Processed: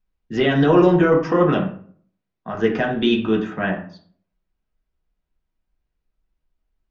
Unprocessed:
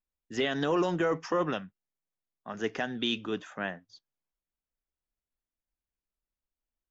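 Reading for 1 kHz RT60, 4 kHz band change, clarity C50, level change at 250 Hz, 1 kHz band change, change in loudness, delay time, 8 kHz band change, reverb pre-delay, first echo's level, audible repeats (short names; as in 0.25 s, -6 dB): 0.50 s, +5.5 dB, 8.5 dB, +15.0 dB, +10.5 dB, +12.5 dB, none, n/a, 3 ms, none, none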